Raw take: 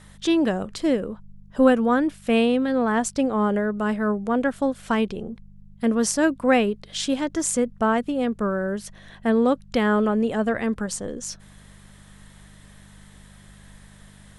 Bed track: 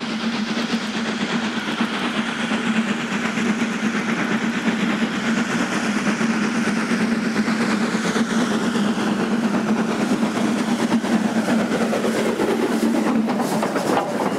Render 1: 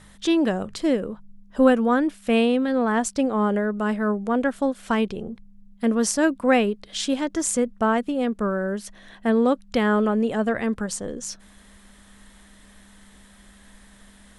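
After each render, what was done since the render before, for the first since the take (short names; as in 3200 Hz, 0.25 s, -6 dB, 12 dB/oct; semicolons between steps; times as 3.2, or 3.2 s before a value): de-hum 50 Hz, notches 3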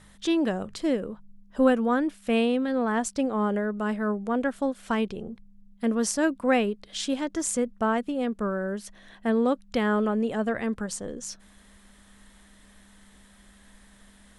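gain -4 dB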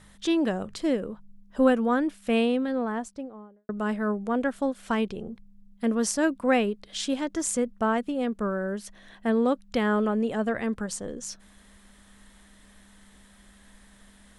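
2.42–3.69 studio fade out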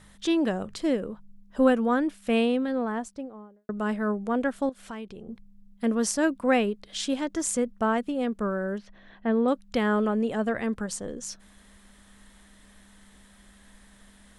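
4.69–5.29 compressor 2:1, threshold -44 dBFS; 8.78–9.48 air absorption 240 m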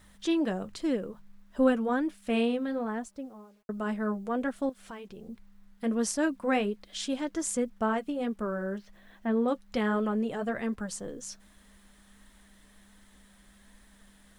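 bit-crush 11-bit; flange 1.3 Hz, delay 2.8 ms, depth 4.2 ms, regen -47%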